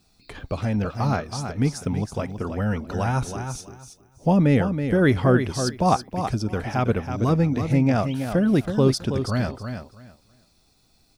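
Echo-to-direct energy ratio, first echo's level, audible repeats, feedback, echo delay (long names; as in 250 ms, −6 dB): −8.0 dB, −8.0 dB, 2, 19%, 325 ms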